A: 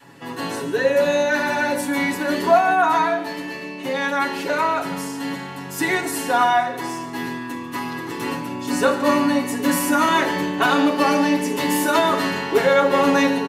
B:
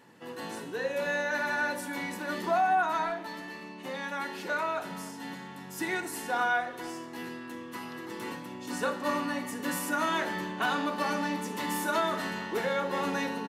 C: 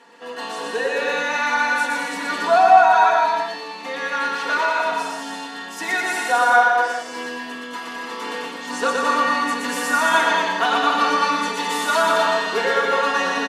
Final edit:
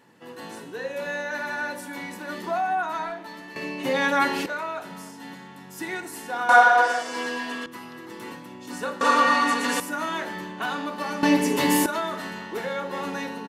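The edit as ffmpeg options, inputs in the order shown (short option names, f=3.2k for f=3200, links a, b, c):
-filter_complex "[0:a]asplit=2[a][b];[2:a]asplit=2[c][d];[1:a]asplit=5[e][f][g][h][i];[e]atrim=end=3.562[j];[a]atrim=start=3.558:end=4.462[k];[f]atrim=start=4.458:end=6.492[l];[c]atrim=start=6.488:end=7.662[m];[g]atrim=start=7.658:end=9.012[n];[d]atrim=start=9.008:end=9.802[o];[h]atrim=start=9.798:end=11.232[p];[b]atrim=start=11.228:end=11.862[q];[i]atrim=start=11.858[r];[j][k]acrossfade=d=0.004:c1=hsin:c2=hsin[s];[s][l]acrossfade=d=0.004:c1=hsin:c2=hsin[t];[t][m]acrossfade=d=0.004:c1=hsin:c2=hsin[u];[u][n]acrossfade=d=0.004:c1=hsin:c2=hsin[v];[v][o]acrossfade=d=0.004:c1=hsin:c2=hsin[w];[w][p]acrossfade=d=0.004:c1=hsin:c2=hsin[x];[x][q]acrossfade=d=0.004:c1=hsin:c2=hsin[y];[y][r]acrossfade=d=0.004:c1=hsin:c2=hsin"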